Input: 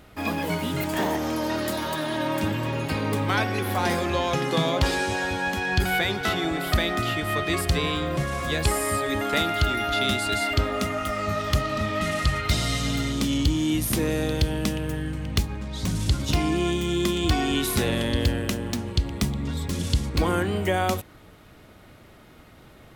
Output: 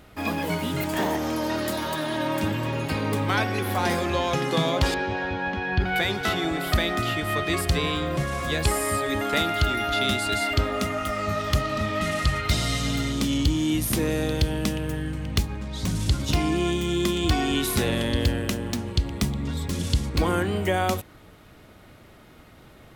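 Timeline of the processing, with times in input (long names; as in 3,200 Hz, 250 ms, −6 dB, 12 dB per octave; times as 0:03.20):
0:04.94–0:05.96: high-frequency loss of the air 270 metres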